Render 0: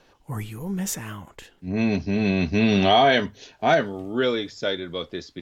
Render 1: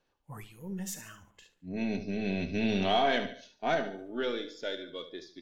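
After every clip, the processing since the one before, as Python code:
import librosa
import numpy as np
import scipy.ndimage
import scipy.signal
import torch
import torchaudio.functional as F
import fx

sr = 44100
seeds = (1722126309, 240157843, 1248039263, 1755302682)

y = np.where(x < 0.0, 10.0 ** (-3.0 / 20.0) * x, x)
y = fx.echo_feedback(y, sr, ms=72, feedback_pct=47, wet_db=-10)
y = fx.noise_reduce_blind(y, sr, reduce_db=10)
y = y * librosa.db_to_amplitude(-9.0)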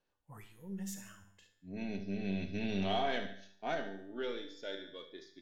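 y = fx.comb_fb(x, sr, f0_hz=98.0, decay_s=0.68, harmonics='all', damping=0.0, mix_pct=70)
y = y * librosa.db_to_amplitude(1.0)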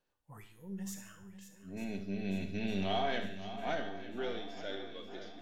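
y = fx.echo_swing(x, sr, ms=902, ratio=1.5, feedback_pct=49, wet_db=-12)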